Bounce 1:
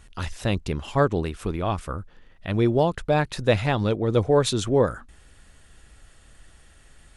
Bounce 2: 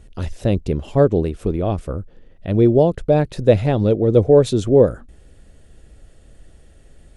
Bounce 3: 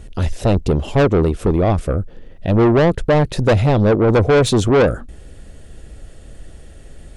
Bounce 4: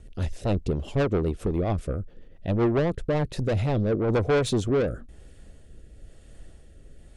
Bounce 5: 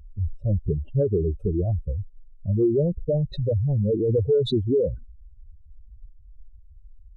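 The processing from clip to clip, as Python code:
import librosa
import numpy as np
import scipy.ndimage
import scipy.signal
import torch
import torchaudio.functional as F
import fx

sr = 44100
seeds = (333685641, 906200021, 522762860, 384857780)

y1 = fx.low_shelf_res(x, sr, hz=750.0, db=9.5, q=1.5)
y1 = y1 * librosa.db_to_amplitude(-3.5)
y2 = 10.0 ** (-18.0 / 20.0) * np.tanh(y1 / 10.0 ** (-18.0 / 20.0))
y2 = y2 * librosa.db_to_amplitude(8.5)
y3 = fx.rotary_switch(y2, sr, hz=7.5, then_hz=1.0, switch_at_s=2.95)
y3 = y3 * librosa.db_to_amplitude(-8.5)
y4 = fx.spec_expand(y3, sr, power=3.3)
y4 = y4 * librosa.db_to_amplitude(2.5)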